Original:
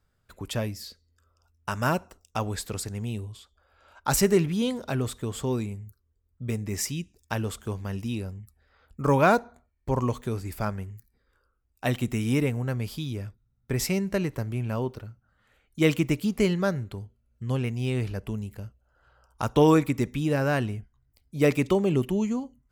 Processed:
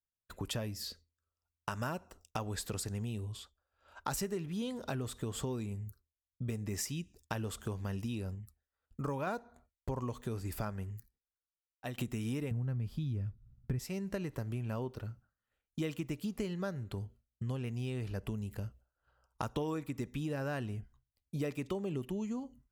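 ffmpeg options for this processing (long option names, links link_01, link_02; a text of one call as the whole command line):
ffmpeg -i in.wav -filter_complex "[0:a]asettb=1/sr,asplit=3[link_01][link_02][link_03];[link_01]atrim=end=12.514[link_04];[link_02]atrim=start=12.51:end=13.79,asetpts=PTS-STARTPTS,afade=type=in:duration=0.004:curve=qsin,afade=type=out:start_time=1.276:duration=0.004:curve=qsin,bass=frequency=250:gain=13,treble=frequency=4000:gain=-7[link_05];[link_03]atrim=start=13.786[link_06];[link_04][link_05]acrossfade=duration=0.004:curve1=hsin:curve2=qsin[link_07];[link_07][link_06]acrossfade=duration=0.004:curve1=qsin:curve2=hsin,asplit=4[link_08][link_09][link_10][link_11];[link_08]atrim=end=8.352[link_12];[link_09]atrim=start=8.348:end=9.272,asetpts=PTS-STARTPTS,volume=-4dB[link_13];[link_10]atrim=start=9.268:end=11.98,asetpts=PTS-STARTPTS,afade=type=out:start_time=1.512:duration=1.2:silence=0.112202[link_14];[link_11]atrim=start=11.98,asetpts=PTS-STARTPTS,afade=type=in:duration=0.004:curve=hsin:silence=0.112202[link_15];[link_12][link_13]acrossfade=duration=0.004:curve1=hsin:curve2=hsin[link_16];[link_14][link_15]concat=n=2:v=0:a=1[link_17];[link_16][link_17]acrossfade=duration=0.004:curve1=hsin:curve2=hsin,bandreject=frequency=2200:width=14,agate=range=-33dB:threshold=-51dB:ratio=3:detection=peak,acompressor=threshold=-36dB:ratio=6,volume=1dB" out.wav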